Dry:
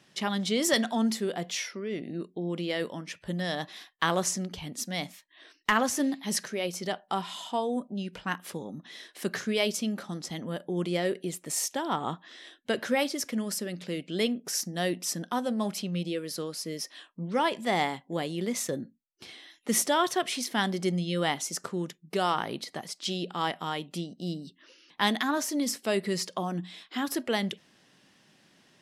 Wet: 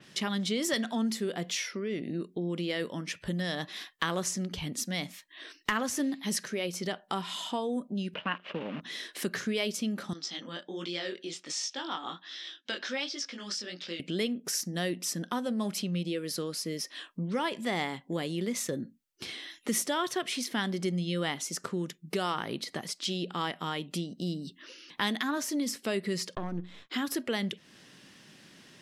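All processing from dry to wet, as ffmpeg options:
-filter_complex "[0:a]asettb=1/sr,asplit=3[s0][s1][s2];[s0]atrim=end=8.144[s3];[s1]atrim=start=8.14:end=8.81,asetpts=PTS-STARTPTS,afade=t=in:d=0.004:c=qsin,afade=t=out:st=0.666:d=0.004:c=qsin,acrusher=bits=8:dc=4:mix=0:aa=0.000001,highpass=170,equalizer=f=370:t=q:w=4:g=-3,equalizer=f=610:t=q:w=4:g=9,equalizer=f=1100:t=q:w=4:g=4,equalizer=f=2800:t=q:w=4:g=9,lowpass=f=3200:w=0.5412,lowpass=f=3200:w=1.3066[s4];[s2]atrim=start=8.806[s5];[s3][s4]acrossfade=d=0.004:c1=hsin:c2=qsin[s6];[s6][s5]acrossfade=d=0.004:c1=qsin:c2=hsin,asettb=1/sr,asplit=3[s7][s8][s9];[s7]atrim=end=10.134[s10];[s8]atrim=start=10.13:end=14,asetpts=PTS-STARTPTS,afade=t=in:d=0.004:c=qsin,afade=t=out:st=3.866:d=0.004:c=qsin,flanger=delay=17.5:depth=7.1:speed=1.3,highpass=420,equalizer=f=440:t=q:w=4:g=-9,equalizer=f=630:t=q:w=4:g=-6,equalizer=f=1000:t=q:w=4:g=-4,equalizer=f=2000:t=q:w=4:g=-3,equalizer=f=3500:t=q:w=4:g=5,equalizer=f=5300:t=q:w=4:g=6,lowpass=f=6300:w=0.5412,lowpass=f=6300:w=1.3066[s11];[s9]atrim=start=13.996[s12];[s10][s11]acrossfade=d=0.004:c1=hsin:c2=qsin[s13];[s13][s12]acrossfade=d=0.004:c1=qsin:c2=hsin,asettb=1/sr,asplit=3[s14][s15][s16];[s14]atrim=end=26.354[s17];[s15]atrim=start=26.35:end=26.9,asetpts=PTS-STARTPTS,afade=t=in:d=0.004:c=qsin,afade=t=out:st=0.546:d=0.004:c=qsin,aeval=exprs='if(lt(val(0),0),0.251*val(0),val(0))':c=same,lowpass=f=1300:p=1,agate=range=0.0224:threshold=0.00178:ratio=3:release=100:detection=peak[s18];[s16]atrim=start=26.896[s19];[s17][s18]acrossfade=d=0.004:c1=hsin:c2=qsin[s20];[s20][s19]acrossfade=d=0.004:c1=qsin:c2=hsin,equalizer=f=760:t=o:w=0.85:g=-5.5,acompressor=threshold=0.00708:ratio=2,adynamicequalizer=threshold=0.00224:dfrequency=4800:dqfactor=0.7:tfrequency=4800:tqfactor=0.7:attack=5:release=100:ratio=0.375:range=2:mode=cutabove:tftype=highshelf,volume=2.37"

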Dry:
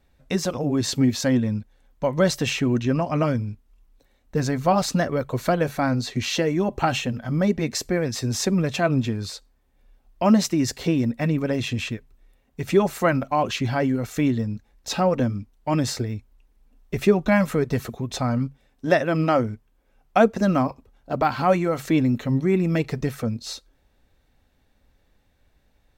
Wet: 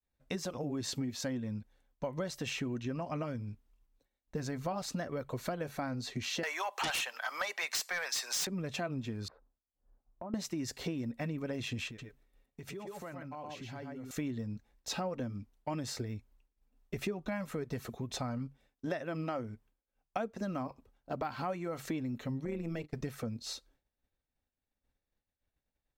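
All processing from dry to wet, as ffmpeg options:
-filter_complex "[0:a]asettb=1/sr,asplit=3[s0][s1][s2];[s0]atrim=end=6.434[s3];[s1]atrim=start=6.43:end=8.47,asetpts=PTS-STARTPTS,afade=t=in:d=0.004:c=qsin,afade=t=out:st=2.036:d=0.004:c=qsin,highpass=f=860:w=0.5412,highpass=f=860:w=1.3066,aeval=exprs='0.282*sin(PI/2*5.01*val(0)/0.282)':c=same[s4];[s2]atrim=start=8.466[s5];[s3][s4]acrossfade=d=0.004:c1=hsin:c2=qsin[s6];[s6][s5]acrossfade=d=0.004:c1=qsin:c2=hsin,asettb=1/sr,asplit=3[s7][s8][s9];[s7]atrim=end=9.284[s10];[s8]atrim=start=9.28:end=10.34,asetpts=PTS-STARTPTS,afade=t=in:d=0.004:c=qsin,afade=t=out:st=1.056:d=0.004:c=qsin,lowpass=f=1300:w=0.5412,lowpass=f=1300:w=1.3066,acompressor=threshold=0.0224:ratio=6:attack=3.2:release=140:knee=1:detection=peak[s11];[s9]atrim=start=10.336[s12];[s10][s11]acrossfade=d=0.004:c1=hsin:c2=qsin[s13];[s13][s12]acrossfade=d=0.004:c1=qsin:c2=hsin,asettb=1/sr,asplit=3[s14][s15][s16];[s14]atrim=end=11.874[s17];[s15]atrim=start=11.87:end=14.11,asetpts=PTS-STARTPTS,afade=t=in:d=0.004:c=qsin,afade=t=out:st=2.236:d=0.004:c=qsin,aecho=1:1:112|119:0.376|0.562,atrim=end_sample=98784,acompressor=threshold=0.02:ratio=6:attack=3.2:release=140:knee=1:detection=peak[s18];[s16]atrim=start=14.106[s19];[s17][s18]acrossfade=d=0.004:c1=hsin:c2=qsin[s20];[s20][s19]acrossfade=d=0.004:c1=qsin:c2=hsin,asettb=1/sr,asplit=3[s21][s22][s23];[s21]atrim=end=22.454[s24];[s22]atrim=start=22.45:end=22.94,asetpts=PTS-STARTPTS,afade=t=in:d=0.004:c=qsin,afade=t=out:st=0.486:d=0.004:c=qsin,bandreject=f=50:t=h:w=6,bandreject=f=100:t=h:w=6,bandreject=f=150:t=h:w=6,bandreject=f=200:t=h:w=6,bandreject=f=250:t=h:w=6,bandreject=f=300:t=h:w=6,bandreject=f=350:t=h:w=6,agate=range=0.0708:threshold=0.0251:ratio=16:release=100:detection=peak,tremolo=f=160:d=0.71[s25];[s23]atrim=start=22.936[s26];[s24][s25]acrossfade=d=0.004:c1=hsin:c2=qsin[s27];[s27][s26]acrossfade=d=0.004:c1=qsin:c2=hsin,lowshelf=f=150:g=-3,acompressor=threshold=0.0501:ratio=6,agate=range=0.0224:threshold=0.00224:ratio=3:detection=peak,volume=0.422"

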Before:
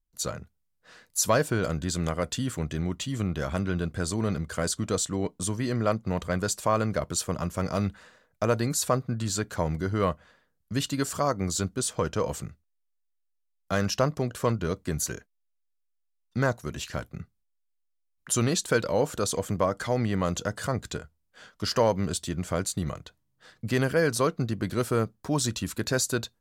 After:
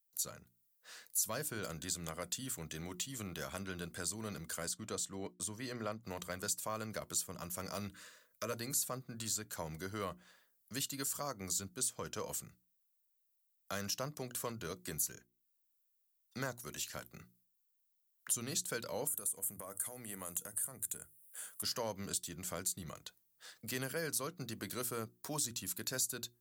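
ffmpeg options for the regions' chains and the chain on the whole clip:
-filter_complex "[0:a]asettb=1/sr,asplit=3[s0][s1][s2];[s0]atrim=end=4.674[s3];[s1]atrim=start=4.67:end=6.03,asetpts=PTS-STARTPTS,afade=t=in:d=0.004:c=qsin,afade=t=out:st=1.356:d=0.004:c=qsin,highshelf=f=5400:g=-10,agate=range=0.0224:threshold=0.00631:ratio=3:release=100:detection=peak[s4];[s2]atrim=start=6.026[s5];[s3][s4]acrossfade=d=0.004:c1=hsin:c2=qsin[s6];[s6][s5]acrossfade=d=0.004:c1=qsin:c2=hsin,asettb=1/sr,asplit=3[s7][s8][s9];[s7]atrim=end=7.884[s10];[s8]atrim=start=7.88:end=8.53,asetpts=PTS-STARTPTS,afade=t=in:d=0.004:c=qsin,afade=t=out:st=0.646:d=0.004:c=qsin,asuperstop=centerf=790:order=20:qfactor=2.7,bandreject=f=50:t=h:w=6,bandreject=f=100:t=h:w=6,bandreject=f=150:t=h:w=6,bandreject=f=200:t=h:w=6,bandreject=f=250:t=h:w=6,bandreject=f=300:t=h:w=6,bandreject=f=350:t=h:w=6[s11];[s9]atrim=start=8.526[s12];[s10][s11]acrossfade=d=0.004:c1=hsin:c2=qsin[s13];[s13][s12]acrossfade=d=0.004:c1=qsin:c2=hsin,asettb=1/sr,asplit=3[s14][s15][s16];[s14]atrim=end=19.074[s17];[s15]atrim=start=19.07:end=21.63,asetpts=PTS-STARTPTS,afade=t=in:d=0.004:c=qsin,afade=t=out:st=2.556:d=0.004:c=qsin,highshelf=f=7100:t=q:w=3:g=13,bandreject=f=50:t=h:w=6,bandreject=f=100:t=h:w=6,bandreject=f=150:t=h:w=6,acompressor=threshold=0.0282:ratio=5:attack=3.2:release=140:knee=1:detection=peak[s18];[s16]atrim=start=21.626[s19];[s17][s18]acrossfade=d=0.004:c1=hsin:c2=qsin[s20];[s20][s19]acrossfade=d=0.004:c1=qsin:c2=hsin,aemphasis=mode=production:type=riaa,bandreject=f=60:t=h:w=6,bandreject=f=120:t=h:w=6,bandreject=f=180:t=h:w=6,bandreject=f=240:t=h:w=6,bandreject=f=300:t=h:w=6,bandreject=f=360:t=h:w=6,acrossover=split=230[s21][s22];[s22]acompressor=threshold=0.0112:ratio=2[s23];[s21][s23]amix=inputs=2:normalize=0,volume=0.531"

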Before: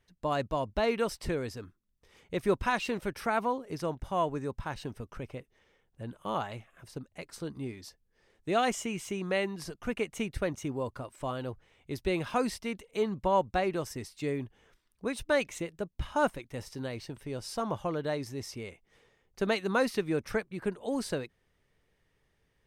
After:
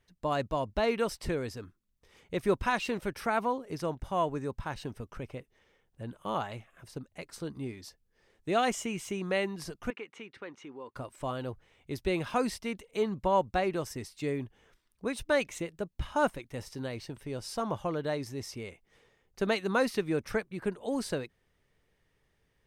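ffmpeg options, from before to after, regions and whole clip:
-filter_complex "[0:a]asettb=1/sr,asplit=3[s0][s1][s2];[s0]atrim=end=9.904[s3];[s1]atrim=start=9.9:end=10.95,asetpts=PTS-STARTPTS,afade=t=in:d=0.004:c=qsin,afade=t=out:st=1.046:d=0.004:c=qsin,equalizer=f=640:w=3.5:g=-13.5,acompressor=threshold=0.0112:ratio=2:attack=3.2:release=140:knee=1:detection=peak,highpass=370,lowpass=3100[s4];[s2]atrim=start=10.946[s5];[s3][s4]acrossfade=d=0.004:c1=hsin:c2=qsin[s6];[s6][s5]acrossfade=d=0.004:c1=qsin:c2=hsin"

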